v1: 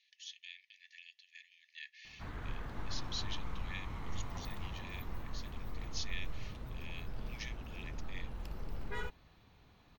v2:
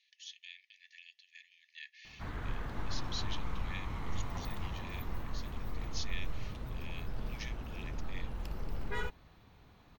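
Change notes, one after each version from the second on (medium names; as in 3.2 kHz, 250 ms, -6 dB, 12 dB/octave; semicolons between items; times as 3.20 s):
background +3.5 dB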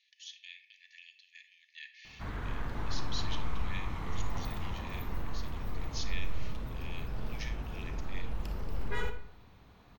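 reverb: on, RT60 0.65 s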